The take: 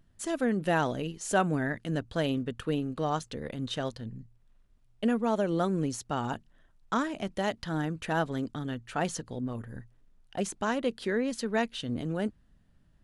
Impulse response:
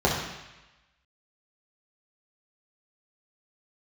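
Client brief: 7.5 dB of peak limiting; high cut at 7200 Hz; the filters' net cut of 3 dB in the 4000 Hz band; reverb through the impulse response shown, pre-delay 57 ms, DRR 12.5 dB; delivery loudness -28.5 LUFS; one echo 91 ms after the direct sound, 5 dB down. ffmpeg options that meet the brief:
-filter_complex "[0:a]lowpass=7.2k,equalizer=f=4k:t=o:g=-4,alimiter=limit=-21.5dB:level=0:latency=1,aecho=1:1:91:0.562,asplit=2[a][b];[1:a]atrim=start_sample=2205,adelay=57[c];[b][c]afir=irnorm=-1:irlink=0,volume=-29.5dB[d];[a][d]amix=inputs=2:normalize=0,volume=3.5dB"

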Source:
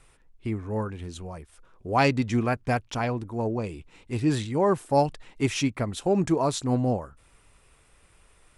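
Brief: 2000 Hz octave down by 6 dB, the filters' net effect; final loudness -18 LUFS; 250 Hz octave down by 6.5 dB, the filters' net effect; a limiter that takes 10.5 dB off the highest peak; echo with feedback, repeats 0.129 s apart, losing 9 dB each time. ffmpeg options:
-af "equalizer=f=250:t=o:g=-8.5,equalizer=f=2k:t=o:g=-8,alimiter=limit=-21dB:level=0:latency=1,aecho=1:1:129|258|387|516:0.355|0.124|0.0435|0.0152,volume=14dB"

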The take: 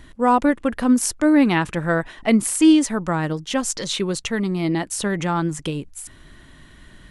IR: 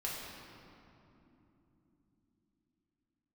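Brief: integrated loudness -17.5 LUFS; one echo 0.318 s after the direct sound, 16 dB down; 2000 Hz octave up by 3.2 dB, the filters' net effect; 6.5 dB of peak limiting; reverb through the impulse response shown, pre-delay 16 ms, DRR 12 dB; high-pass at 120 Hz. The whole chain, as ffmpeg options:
-filter_complex "[0:a]highpass=120,equalizer=f=2k:t=o:g=4,alimiter=limit=-10.5dB:level=0:latency=1,aecho=1:1:318:0.158,asplit=2[a][b];[1:a]atrim=start_sample=2205,adelay=16[c];[b][c]afir=irnorm=-1:irlink=0,volume=-14.5dB[d];[a][d]amix=inputs=2:normalize=0,volume=3.5dB"

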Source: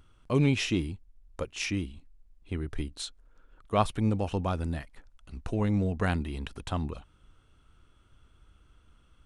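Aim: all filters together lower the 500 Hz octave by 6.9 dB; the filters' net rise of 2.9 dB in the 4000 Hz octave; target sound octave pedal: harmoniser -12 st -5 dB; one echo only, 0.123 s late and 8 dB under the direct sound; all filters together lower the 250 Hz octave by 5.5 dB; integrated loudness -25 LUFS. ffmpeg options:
-filter_complex "[0:a]equalizer=f=250:t=o:g=-5.5,equalizer=f=500:t=o:g=-7.5,equalizer=f=4k:t=o:g=4,aecho=1:1:123:0.398,asplit=2[a][b];[b]asetrate=22050,aresample=44100,atempo=2,volume=-5dB[c];[a][c]amix=inputs=2:normalize=0,volume=7dB"

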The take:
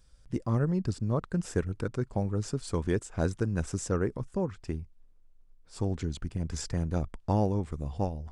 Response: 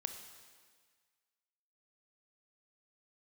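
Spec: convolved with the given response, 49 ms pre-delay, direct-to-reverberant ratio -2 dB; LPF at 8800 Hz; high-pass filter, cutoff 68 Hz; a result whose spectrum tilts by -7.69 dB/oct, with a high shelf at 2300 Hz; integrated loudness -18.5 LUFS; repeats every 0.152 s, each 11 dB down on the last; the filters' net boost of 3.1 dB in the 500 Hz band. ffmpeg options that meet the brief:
-filter_complex "[0:a]highpass=68,lowpass=8.8k,equalizer=f=500:t=o:g=4,highshelf=f=2.3k:g=-4.5,aecho=1:1:152|304|456:0.282|0.0789|0.0221,asplit=2[a][b];[1:a]atrim=start_sample=2205,adelay=49[c];[b][c]afir=irnorm=-1:irlink=0,volume=3dB[d];[a][d]amix=inputs=2:normalize=0,volume=8.5dB"

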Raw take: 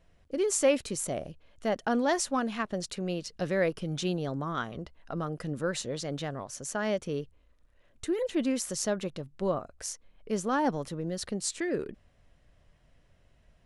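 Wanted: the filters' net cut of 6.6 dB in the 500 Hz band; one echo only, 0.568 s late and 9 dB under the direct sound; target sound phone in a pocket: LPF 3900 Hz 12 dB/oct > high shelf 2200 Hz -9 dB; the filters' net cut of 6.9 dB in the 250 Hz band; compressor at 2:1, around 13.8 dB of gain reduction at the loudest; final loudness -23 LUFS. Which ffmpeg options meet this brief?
-af "equalizer=f=250:t=o:g=-7.5,equalizer=f=500:t=o:g=-5.5,acompressor=threshold=-52dB:ratio=2,lowpass=3.9k,highshelf=f=2.2k:g=-9,aecho=1:1:568:0.355,volume=26dB"

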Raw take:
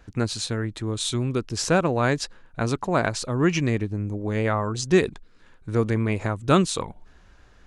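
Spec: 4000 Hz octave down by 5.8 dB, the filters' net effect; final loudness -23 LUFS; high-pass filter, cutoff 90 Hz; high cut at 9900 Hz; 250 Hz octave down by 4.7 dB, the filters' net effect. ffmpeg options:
-af "highpass=90,lowpass=9.9k,equalizer=f=250:t=o:g=-7,equalizer=f=4k:t=o:g=-7,volume=4.5dB"

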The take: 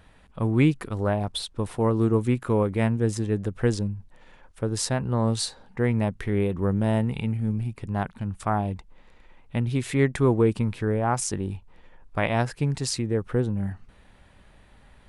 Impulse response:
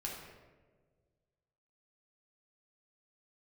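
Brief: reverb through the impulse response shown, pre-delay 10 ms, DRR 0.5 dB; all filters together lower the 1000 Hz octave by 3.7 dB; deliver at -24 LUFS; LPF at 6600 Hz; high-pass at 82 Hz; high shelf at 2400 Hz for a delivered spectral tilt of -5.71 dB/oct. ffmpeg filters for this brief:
-filter_complex "[0:a]highpass=82,lowpass=6.6k,equalizer=f=1k:t=o:g=-6.5,highshelf=f=2.4k:g=8,asplit=2[a][b];[1:a]atrim=start_sample=2205,adelay=10[c];[b][c]afir=irnorm=-1:irlink=0,volume=-1dB[d];[a][d]amix=inputs=2:normalize=0,volume=-1dB"

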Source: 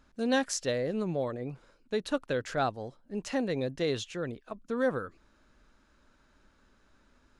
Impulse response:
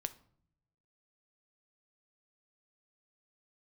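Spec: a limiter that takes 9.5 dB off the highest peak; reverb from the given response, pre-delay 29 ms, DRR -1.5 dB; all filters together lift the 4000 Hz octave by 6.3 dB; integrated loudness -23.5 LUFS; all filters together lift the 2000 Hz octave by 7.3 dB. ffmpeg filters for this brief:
-filter_complex "[0:a]equalizer=f=2k:t=o:g=8.5,equalizer=f=4k:t=o:g=5,alimiter=limit=-20.5dB:level=0:latency=1,asplit=2[a][b];[1:a]atrim=start_sample=2205,adelay=29[c];[b][c]afir=irnorm=-1:irlink=0,volume=2.5dB[d];[a][d]amix=inputs=2:normalize=0,volume=5.5dB"

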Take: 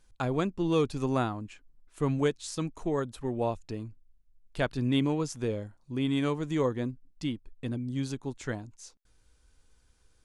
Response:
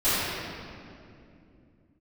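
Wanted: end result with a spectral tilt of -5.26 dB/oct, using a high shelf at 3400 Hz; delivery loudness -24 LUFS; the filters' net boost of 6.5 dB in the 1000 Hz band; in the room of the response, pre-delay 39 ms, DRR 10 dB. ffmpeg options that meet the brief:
-filter_complex "[0:a]equalizer=f=1k:t=o:g=9,highshelf=f=3.4k:g=-8,asplit=2[a][b];[1:a]atrim=start_sample=2205,adelay=39[c];[b][c]afir=irnorm=-1:irlink=0,volume=-27dB[d];[a][d]amix=inputs=2:normalize=0,volume=6dB"

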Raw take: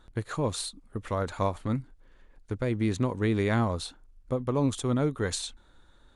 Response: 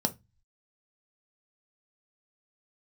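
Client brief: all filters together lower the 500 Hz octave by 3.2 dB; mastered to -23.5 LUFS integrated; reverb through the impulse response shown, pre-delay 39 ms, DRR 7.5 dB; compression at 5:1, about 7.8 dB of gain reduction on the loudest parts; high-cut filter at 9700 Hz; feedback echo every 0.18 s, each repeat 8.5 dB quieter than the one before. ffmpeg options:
-filter_complex "[0:a]lowpass=9.7k,equalizer=f=500:t=o:g=-4,acompressor=threshold=-31dB:ratio=5,aecho=1:1:180|360|540|720:0.376|0.143|0.0543|0.0206,asplit=2[a][b];[1:a]atrim=start_sample=2205,adelay=39[c];[b][c]afir=irnorm=-1:irlink=0,volume=-14dB[d];[a][d]amix=inputs=2:normalize=0,volume=11dB"

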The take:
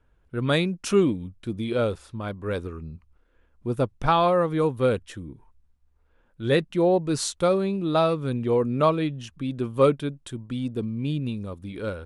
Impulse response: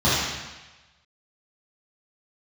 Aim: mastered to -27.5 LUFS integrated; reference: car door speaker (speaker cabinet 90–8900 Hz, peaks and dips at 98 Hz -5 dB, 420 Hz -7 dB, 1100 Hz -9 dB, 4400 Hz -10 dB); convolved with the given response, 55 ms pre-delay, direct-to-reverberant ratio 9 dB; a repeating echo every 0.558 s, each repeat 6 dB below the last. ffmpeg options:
-filter_complex "[0:a]aecho=1:1:558|1116|1674|2232|2790|3348:0.501|0.251|0.125|0.0626|0.0313|0.0157,asplit=2[a][b];[1:a]atrim=start_sample=2205,adelay=55[c];[b][c]afir=irnorm=-1:irlink=0,volume=-29dB[d];[a][d]amix=inputs=2:normalize=0,highpass=90,equalizer=f=98:t=q:w=4:g=-5,equalizer=f=420:t=q:w=4:g=-7,equalizer=f=1.1k:t=q:w=4:g=-9,equalizer=f=4.4k:t=q:w=4:g=-10,lowpass=f=8.9k:w=0.5412,lowpass=f=8.9k:w=1.3066,volume=-2dB"

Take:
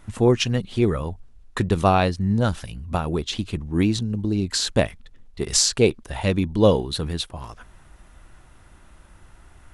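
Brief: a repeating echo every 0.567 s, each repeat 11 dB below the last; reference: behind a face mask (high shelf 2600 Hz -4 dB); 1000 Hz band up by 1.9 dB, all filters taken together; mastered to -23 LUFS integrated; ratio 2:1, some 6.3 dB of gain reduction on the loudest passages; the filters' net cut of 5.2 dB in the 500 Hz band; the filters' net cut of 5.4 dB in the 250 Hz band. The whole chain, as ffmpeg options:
-af "equalizer=f=250:t=o:g=-6,equalizer=f=500:t=o:g=-6,equalizer=f=1k:t=o:g=6,acompressor=threshold=-23dB:ratio=2,highshelf=f=2.6k:g=-4,aecho=1:1:567|1134|1701:0.282|0.0789|0.0221,volume=5.5dB"

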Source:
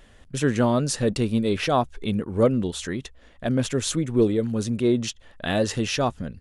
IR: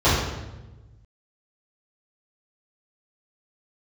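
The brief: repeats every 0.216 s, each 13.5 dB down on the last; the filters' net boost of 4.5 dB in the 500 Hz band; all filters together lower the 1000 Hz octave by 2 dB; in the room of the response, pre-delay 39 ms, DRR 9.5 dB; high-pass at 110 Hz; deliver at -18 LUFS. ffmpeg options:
-filter_complex "[0:a]highpass=110,equalizer=f=500:t=o:g=7,equalizer=f=1k:t=o:g=-6.5,aecho=1:1:216|432:0.211|0.0444,asplit=2[a][b];[1:a]atrim=start_sample=2205,adelay=39[c];[b][c]afir=irnorm=-1:irlink=0,volume=-31dB[d];[a][d]amix=inputs=2:normalize=0,volume=3dB"

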